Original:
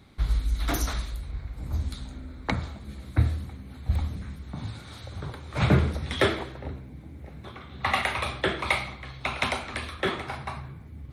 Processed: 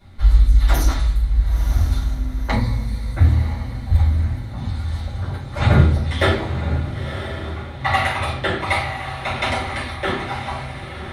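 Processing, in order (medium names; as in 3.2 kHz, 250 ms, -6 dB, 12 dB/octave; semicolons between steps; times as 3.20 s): 2.52–3.14 s: rippled EQ curve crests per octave 0.95, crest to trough 17 dB; echo that smears into a reverb 979 ms, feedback 42%, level -9 dB; simulated room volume 170 m³, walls furnished, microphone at 5 m; trim -5 dB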